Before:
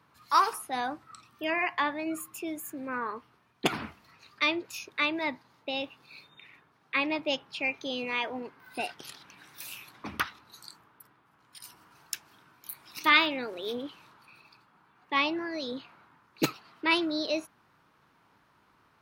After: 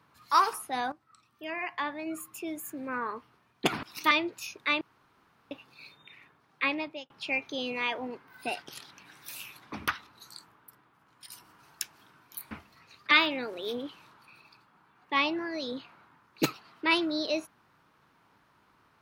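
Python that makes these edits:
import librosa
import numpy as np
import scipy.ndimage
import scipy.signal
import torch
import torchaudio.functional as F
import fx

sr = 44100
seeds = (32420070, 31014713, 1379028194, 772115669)

y = fx.edit(x, sr, fx.fade_in_from(start_s=0.92, length_s=1.77, floor_db=-15.0),
    fx.swap(start_s=3.83, length_s=0.6, other_s=12.83, other_length_s=0.28),
    fx.room_tone_fill(start_s=5.13, length_s=0.7),
    fx.fade_out_span(start_s=6.97, length_s=0.45), tone=tone)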